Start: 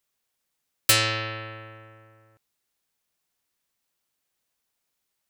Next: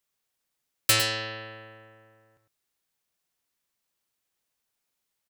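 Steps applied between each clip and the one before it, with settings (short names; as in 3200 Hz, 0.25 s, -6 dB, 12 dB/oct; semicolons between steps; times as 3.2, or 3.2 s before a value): echo 0.105 s -9 dB; gain -2.5 dB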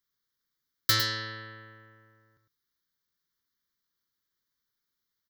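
fixed phaser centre 2600 Hz, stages 6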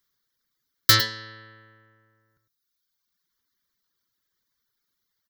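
reverb removal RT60 1.5 s; gain +8 dB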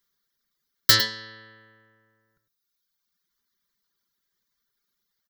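comb 5 ms, depth 43%; gain -1 dB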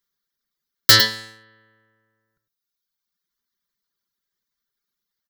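sample leveller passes 2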